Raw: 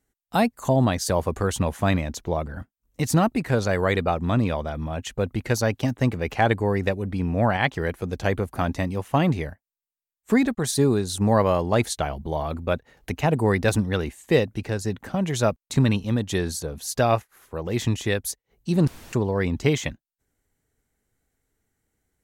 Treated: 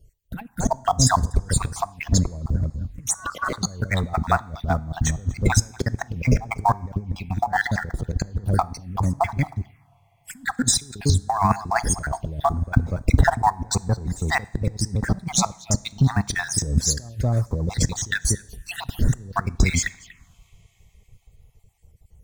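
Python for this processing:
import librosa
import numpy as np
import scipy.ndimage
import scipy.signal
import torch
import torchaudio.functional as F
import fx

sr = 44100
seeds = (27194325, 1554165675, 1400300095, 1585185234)

p1 = fx.spec_dropout(x, sr, seeds[0], share_pct=51)
p2 = fx.quant_companded(p1, sr, bits=4)
p3 = p1 + F.gain(torch.from_numpy(p2), -8.5).numpy()
p4 = 10.0 ** (-10.5 / 20.0) * np.tanh(p3 / 10.0 ** (-10.5 / 20.0))
p5 = fx.bass_treble(p4, sr, bass_db=13, treble_db=-2)
p6 = p5 + fx.echo_single(p5, sr, ms=240, db=-23.5, dry=0)
p7 = fx.ring_mod(p6, sr, carrier_hz=1300.0, at=(3.14, 3.58))
p8 = fx.over_compress(p7, sr, threshold_db=-26.0, ratio=-0.5)
p9 = fx.low_shelf(p8, sr, hz=320.0, db=3.5)
p10 = fx.rev_double_slope(p9, sr, seeds[1], early_s=0.59, late_s=4.7, knee_db=-20, drr_db=19.0)
p11 = fx.env_phaser(p10, sr, low_hz=230.0, high_hz=2900.0, full_db=-25.0)
y = F.gain(torch.from_numpy(p11), 3.0).numpy()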